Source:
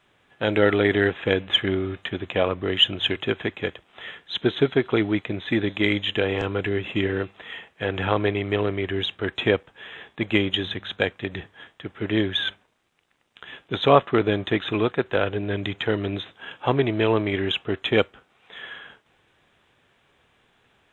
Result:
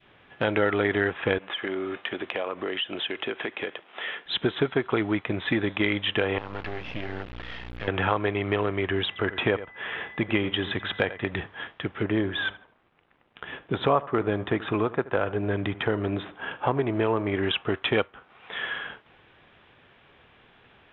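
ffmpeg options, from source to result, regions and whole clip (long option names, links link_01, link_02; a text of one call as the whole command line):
ffmpeg -i in.wav -filter_complex "[0:a]asettb=1/sr,asplit=3[link_01][link_02][link_03];[link_01]atrim=end=1.384[link_04];[link_02]atrim=start=1.38:end=4.26,asetpts=PTS-STARTPTS,afade=type=in:duration=0.004:curve=qsin,afade=type=out:start_time=2.876:duration=0.004:curve=qsin,highpass=310,lowpass=5000,acompressor=threshold=-34dB:ratio=3:attack=3.2:release=140:knee=1:detection=peak[link_05];[link_03]atrim=start=4.256[link_06];[link_04][link_05]acrossfade=duration=0.004:curve1=hsin:curve2=qsin[link_07];[link_07][link_06]acrossfade=duration=0.004:curve1=qsin:curve2=hsin,asettb=1/sr,asplit=3[link_08][link_09][link_10];[link_08]atrim=end=6.384[link_11];[link_09]atrim=start=6.38:end=7.88,asetpts=PTS-STARTPTS,afade=type=in:duration=0.004:curve=qsin,afade=type=out:start_time=1.496:duration=0.004:curve=qsin,aeval=exprs='val(0)+0.00891*(sin(2*PI*60*n/s)+sin(2*PI*2*60*n/s)/2+sin(2*PI*3*60*n/s)/3+sin(2*PI*4*60*n/s)/4+sin(2*PI*5*60*n/s)/5)':channel_layout=same,acompressor=threshold=-38dB:ratio=2.5:attack=3.2:release=140:knee=1:detection=peak,acrusher=bits=5:dc=4:mix=0:aa=0.000001[link_12];[link_10]atrim=start=7.876[link_13];[link_11][link_12]acrossfade=duration=0.004:curve1=hsin:curve2=qsin[link_14];[link_14][link_13]acrossfade=duration=0.004:curve1=qsin:curve2=hsin,asettb=1/sr,asplit=3[link_15][link_16][link_17];[link_15]atrim=end=9.074[link_18];[link_16]atrim=start=9.07:end=11.3,asetpts=PTS-STARTPTS,afade=type=in:duration=0.004:curve=qsin,afade=type=out:start_time=2.226:duration=0.004:curve=qsin,highshelf=frequency=5600:gain=-10,aeval=exprs='val(0)+0.00282*sin(2*PI*2000*n/s)':channel_layout=same,aecho=1:1:87:0.158,atrim=end_sample=98343[link_19];[link_17]atrim=start=11.296[link_20];[link_18][link_19]acrossfade=duration=0.004:curve1=hsin:curve2=qsin[link_21];[link_21][link_20]acrossfade=duration=0.004:curve1=qsin:curve2=hsin,asettb=1/sr,asplit=3[link_22][link_23][link_24];[link_22]atrim=end=12.034[link_25];[link_23]atrim=start=12.03:end=17.43,asetpts=PTS-STARTPTS,afade=type=in:duration=0.004:curve=qsin,afade=type=out:start_time=5.396:duration=0.004:curve=qsin,highshelf=frequency=2300:gain=-11,asplit=2[link_26][link_27];[link_27]adelay=77,lowpass=frequency=2600:poles=1,volume=-19dB,asplit=2[link_28][link_29];[link_29]adelay=77,lowpass=frequency=2600:poles=1,volume=0.32,asplit=2[link_30][link_31];[link_31]adelay=77,lowpass=frequency=2600:poles=1,volume=0.32[link_32];[link_26][link_28][link_30][link_32]amix=inputs=4:normalize=0,atrim=end_sample=238140[link_33];[link_24]atrim=start=17.426[link_34];[link_25][link_33]acrossfade=duration=0.004:curve1=hsin:curve2=qsin[link_35];[link_35][link_34]acrossfade=duration=0.004:curve1=qsin:curve2=hsin,lowpass=frequency=3600:width=0.5412,lowpass=frequency=3600:width=1.3066,adynamicequalizer=threshold=0.0126:dfrequency=1100:dqfactor=1:tfrequency=1100:tqfactor=1:attack=5:release=100:ratio=0.375:range=3.5:mode=boostabove:tftype=bell,acompressor=threshold=-33dB:ratio=2.5,volume=6.5dB" out.wav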